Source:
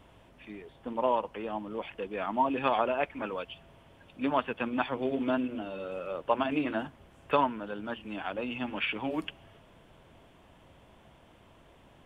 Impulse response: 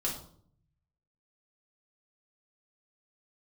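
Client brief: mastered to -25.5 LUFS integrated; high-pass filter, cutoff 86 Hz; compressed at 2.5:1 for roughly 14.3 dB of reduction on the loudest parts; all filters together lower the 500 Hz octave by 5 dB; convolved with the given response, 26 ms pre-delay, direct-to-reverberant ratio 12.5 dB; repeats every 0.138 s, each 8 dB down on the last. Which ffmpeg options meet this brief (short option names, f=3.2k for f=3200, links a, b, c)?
-filter_complex "[0:a]highpass=86,equalizer=f=500:t=o:g=-6.5,acompressor=threshold=-46dB:ratio=2.5,aecho=1:1:138|276|414|552|690:0.398|0.159|0.0637|0.0255|0.0102,asplit=2[a][b];[1:a]atrim=start_sample=2205,adelay=26[c];[b][c]afir=irnorm=-1:irlink=0,volume=-16.5dB[d];[a][d]amix=inputs=2:normalize=0,volume=19dB"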